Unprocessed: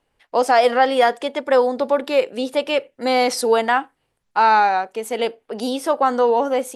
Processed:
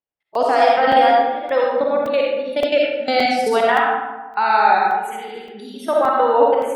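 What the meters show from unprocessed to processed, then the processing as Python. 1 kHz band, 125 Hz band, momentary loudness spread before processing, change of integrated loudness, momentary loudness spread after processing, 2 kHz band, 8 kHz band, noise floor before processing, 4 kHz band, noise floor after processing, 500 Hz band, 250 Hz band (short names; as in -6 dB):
+2.5 dB, n/a, 9 LU, +2.0 dB, 14 LU, +2.0 dB, -8.0 dB, -72 dBFS, 0.0 dB, -40 dBFS, +1.0 dB, -1.0 dB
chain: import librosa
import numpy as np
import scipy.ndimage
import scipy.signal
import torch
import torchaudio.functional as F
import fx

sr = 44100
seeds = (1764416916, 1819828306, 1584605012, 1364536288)

y = fx.noise_reduce_blind(x, sr, reduce_db=27)
y = fx.echo_feedback(y, sr, ms=72, feedback_pct=49, wet_db=-10)
y = fx.level_steps(y, sr, step_db=20)
y = scipy.signal.sosfilt(scipy.signal.butter(2, 54.0, 'highpass', fs=sr, output='sos'), y)
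y = fx.high_shelf(y, sr, hz=8200.0, db=-4.0)
y = fx.rev_freeverb(y, sr, rt60_s=1.2, hf_ratio=0.45, predelay_ms=20, drr_db=-3.0)
y = fx.buffer_crackle(y, sr, first_s=0.35, period_s=0.57, block=128, kind='zero')
y = y * 10.0 ** (2.5 / 20.0)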